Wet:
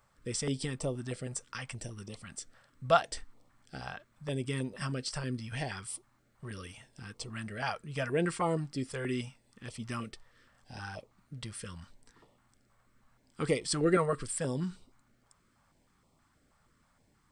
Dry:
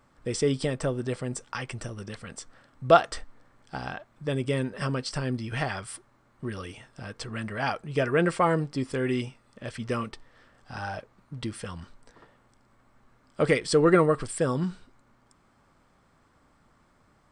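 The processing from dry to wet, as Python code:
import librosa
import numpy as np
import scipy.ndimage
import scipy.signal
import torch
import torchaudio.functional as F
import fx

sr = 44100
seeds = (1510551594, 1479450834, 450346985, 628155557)

y = fx.high_shelf(x, sr, hz=7400.0, db=9.5)
y = fx.filter_held_notch(y, sr, hz=6.3, low_hz=290.0, high_hz=1600.0)
y = F.gain(torch.from_numpy(y), -5.5).numpy()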